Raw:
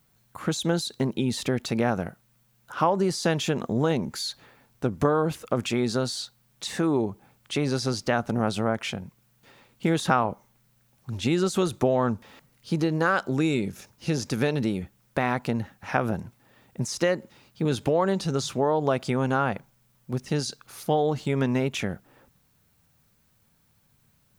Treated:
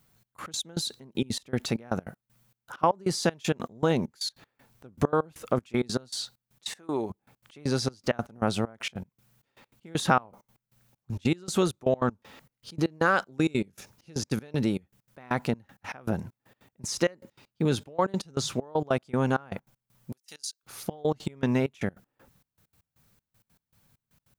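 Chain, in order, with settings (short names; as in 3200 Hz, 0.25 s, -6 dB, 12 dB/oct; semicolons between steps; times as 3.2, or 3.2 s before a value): 6.69–7.1 low shelf 320 Hz -11.5 dB; step gate "xxx..x.x.." 196 bpm -24 dB; 20.12–20.63 differentiator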